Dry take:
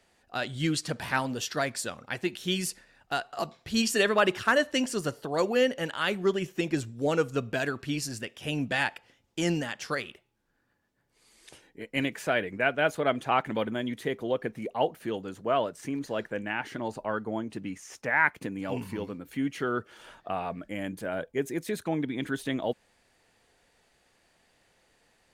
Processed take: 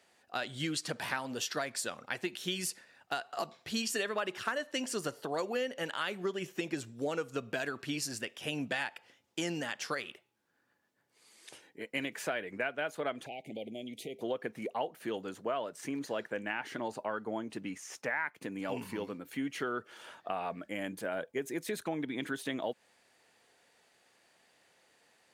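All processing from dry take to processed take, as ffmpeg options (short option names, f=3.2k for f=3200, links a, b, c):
-filter_complex "[0:a]asettb=1/sr,asplit=3[a][b][c];[a]atrim=end=13.264[d];[b]atrim=start=13.26:end=14.21,asetpts=PTS-STARTPTS,afade=t=in:d=0.004:c=qsin,afade=t=out:st=0.946:d=0.004:c=qsin,acompressor=threshold=-37dB:ratio=3:attack=3.2:release=140:knee=1:detection=peak,asuperstop=centerf=1300:order=12:qfactor=0.9[e];[c]atrim=start=14.206[f];[d][e]acrossfade=d=0.004:c1=hsin:c2=qsin[g];[g][f]acrossfade=d=0.004:c1=qsin:c2=hsin,highpass=100,lowshelf=f=210:g=-9.5,acompressor=threshold=-31dB:ratio=6"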